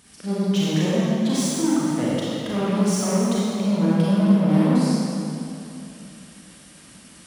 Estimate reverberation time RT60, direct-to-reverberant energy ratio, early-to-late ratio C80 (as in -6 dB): 2.9 s, -8.5 dB, -3.0 dB